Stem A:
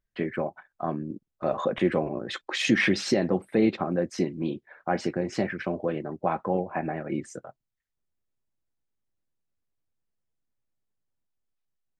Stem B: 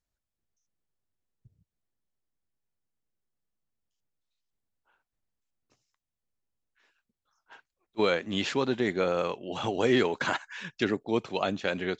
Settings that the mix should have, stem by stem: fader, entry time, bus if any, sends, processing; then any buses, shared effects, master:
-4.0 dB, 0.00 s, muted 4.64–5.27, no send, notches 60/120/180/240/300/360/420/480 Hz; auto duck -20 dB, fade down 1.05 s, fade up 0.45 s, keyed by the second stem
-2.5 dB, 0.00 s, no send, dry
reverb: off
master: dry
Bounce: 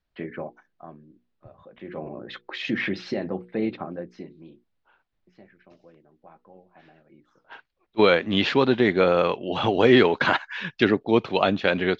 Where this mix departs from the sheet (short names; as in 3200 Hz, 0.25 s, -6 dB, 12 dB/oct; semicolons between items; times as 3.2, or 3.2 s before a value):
stem B -2.5 dB -> +8.0 dB; master: extra LPF 4300 Hz 24 dB/oct